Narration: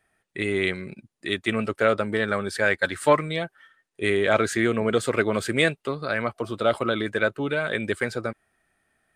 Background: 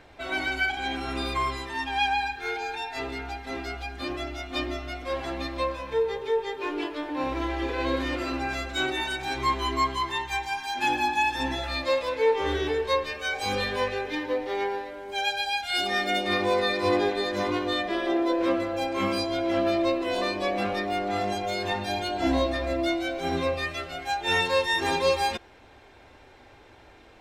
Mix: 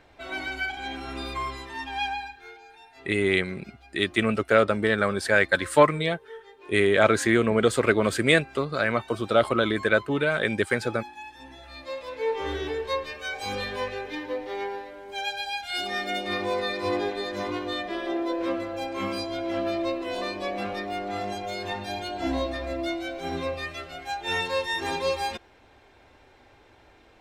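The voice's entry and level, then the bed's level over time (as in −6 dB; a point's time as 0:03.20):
2.70 s, +1.5 dB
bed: 0:02.07 −4 dB
0:02.62 −17.5 dB
0:11.46 −17.5 dB
0:12.38 −3.5 dB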